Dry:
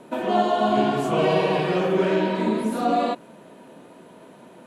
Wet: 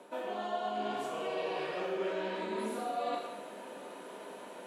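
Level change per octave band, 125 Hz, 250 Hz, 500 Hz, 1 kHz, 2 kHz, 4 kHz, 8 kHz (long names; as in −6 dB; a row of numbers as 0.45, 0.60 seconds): −24.0, −18.5, −13.5, −13.0, −11.5, −11.5, −8.5 decibels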